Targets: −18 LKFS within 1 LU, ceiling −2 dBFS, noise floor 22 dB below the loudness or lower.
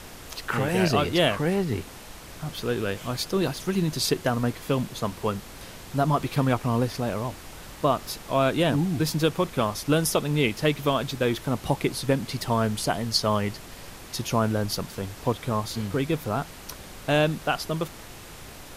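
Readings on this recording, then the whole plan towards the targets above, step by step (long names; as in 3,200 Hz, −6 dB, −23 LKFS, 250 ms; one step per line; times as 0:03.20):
background noise floor −43 dBFS; target noise floor −48 dBFS; integrated loudness −26.0 LKFS; sample peak −8.5 dBFS; target loudness −18.0 LKFS
→ noise reduction from a noise print 6 dB
level +8 dB
brickwall limiter −2 dBFS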